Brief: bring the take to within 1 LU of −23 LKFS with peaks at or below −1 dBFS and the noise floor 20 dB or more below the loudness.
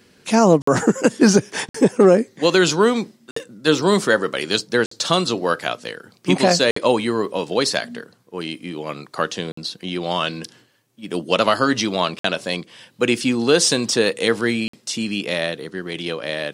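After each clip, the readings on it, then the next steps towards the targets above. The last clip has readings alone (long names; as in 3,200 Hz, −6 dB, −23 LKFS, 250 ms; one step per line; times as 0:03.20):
number of dropouts 8; longest dropout 54 ms; integrated loudness −19.5 LKFS; sample peak −3.0 dBFS; target loudness −23.0 LKFS
→ repair the gap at 0:00.62/0:01.69/0:03.31/0:04.86/0:06.71/0:09.52/0:12.19/0:14.68, 54 ms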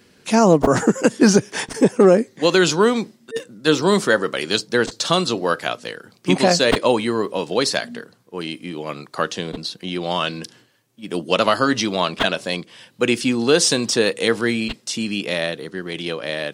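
number of dropouts 0; integrated loudness −19.0 LKFS; sample peak −3.0 dBFS; target loudness −23.0 LKFS
→ level −4 dB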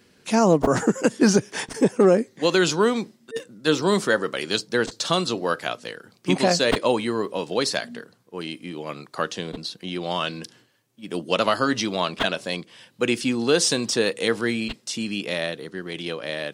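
integrated loudness −23.0 LKFS; sample peak −7.0 dBFS; background noise floor −60 dBFS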